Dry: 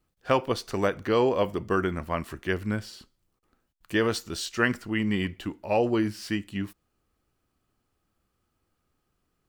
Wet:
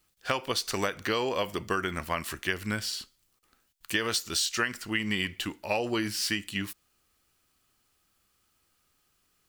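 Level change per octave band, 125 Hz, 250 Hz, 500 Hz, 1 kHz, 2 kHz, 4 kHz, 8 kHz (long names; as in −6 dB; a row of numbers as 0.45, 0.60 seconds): −6.0, −6.0, −6.5, −3.0, +0.5, +6.0, +8.0 decibels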